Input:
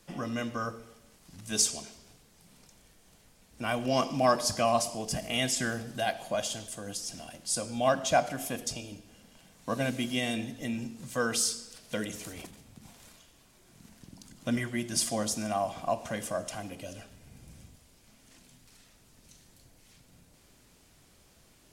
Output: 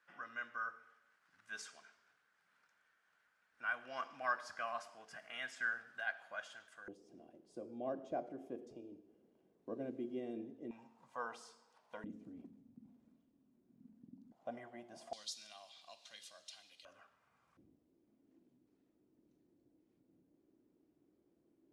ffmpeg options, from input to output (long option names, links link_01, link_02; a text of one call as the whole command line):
ffmpeg -i in.wav -af "asetnsamples=nb_out_samples=441:pad=0,asendcmd='6.88 bandpass f 370;10.71 bandpass f 930;12.04 bandpass f 250;14.32 bandpass f 730;15.13 bandpass f 4000;16.85 bandpass f 1200;17.57 bandpass f 320',bandpass=frequency=1500:width_type=q:width=5.1:csg=0" out.wav